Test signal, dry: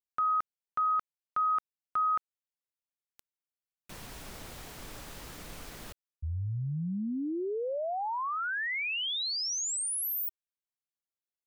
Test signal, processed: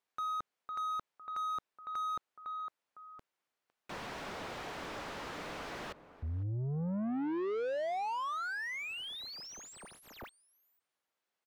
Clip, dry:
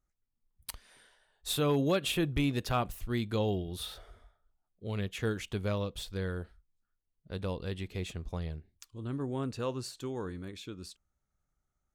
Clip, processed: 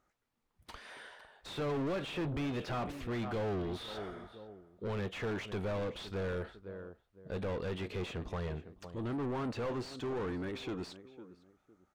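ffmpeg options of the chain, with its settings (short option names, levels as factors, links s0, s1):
-filter_complex "[0:a]asplit=2[s0][s1];[s1]adelay=506,lowpass=f=950:p=1,volume=0.112,asplit=2[s2][s3];[s3]adelay=506,lowpass=f=950:p=1,volume=0.29[s4];[s0][s2][s4]amix=inputs=3:normalize=0,asplit=2[s5][s6];[s6]highpass=f=720:p=1,volume=50.1,asoftclip=type=tanh:threshold=0.112[s7];[s5][s7]amix=inputs=2:normalize=0,lowpass=f=1100:p=1,volume=0.501,acrossover=split=7300[s8][s9];[s9]acompressor=threshold=0.00141:ratio=4:attack=1:release=60[s10];[s8][s10]amix=inputs=2:normalize=0,volume=0.355"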